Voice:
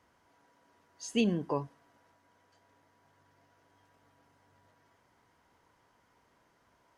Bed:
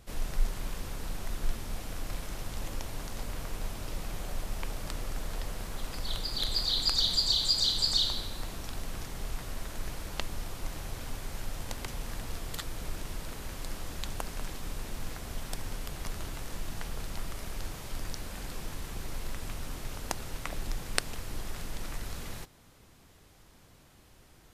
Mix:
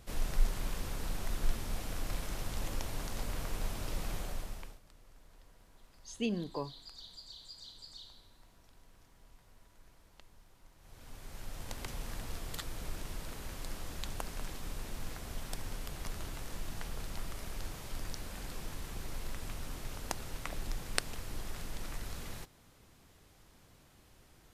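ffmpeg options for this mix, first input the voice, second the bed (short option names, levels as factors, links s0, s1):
-filter_complex "[0:a]adelay=5050,volume=0.501[s0];[1:a]volume=10,afade=t=out:st=4.12:d=0.68:silence=0.0668344,afade=t=in:st=10.78:d=1.1:silence=0.0944061[s1];[s0][s1]amix=inputs=2:normalize=0"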